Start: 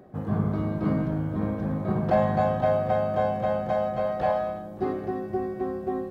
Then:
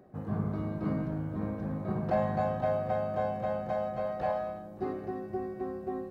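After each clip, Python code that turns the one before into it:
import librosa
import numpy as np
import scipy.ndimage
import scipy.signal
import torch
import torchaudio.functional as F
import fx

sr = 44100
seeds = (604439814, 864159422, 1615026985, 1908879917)

y = fx.notch(x, sr, hz=3300.0, q=11.0)
y = y * librosa.db_to_amplitude(-6.5)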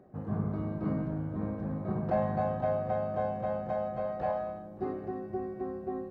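y = fx.high_shelf(x, sr, hz=2700.0, db=-10.0)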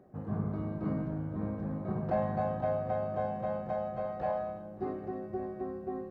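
y = x + 10.0 ** (-18.5 / 20.0) * np.pad(x, (int(1140 * sr / 1000.0), 0))[:len(x)]
y = y * librosa.db_to_amplitude(-1.5)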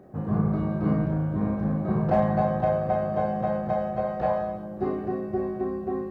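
y = np.clip(x, -10.0 ** (-21.5 / 20.0), 10.0 ** (-21.5 / 20.0))
y = fx.doubler(y, sr, ms=33.0, db=-4.0)
y = y * librosa.db_to_amplitude(8.0)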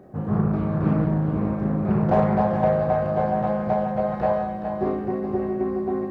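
y = x + 10.0 ** (-7.5 / 20.0) * np.pad(x, (int(420 * sr / 1000.0), 0))[:len(x)]
y = fx.doppler_dist(y, sr, depth_ms=0.42)
y = y * librosa.db_to_amplitude(2.5)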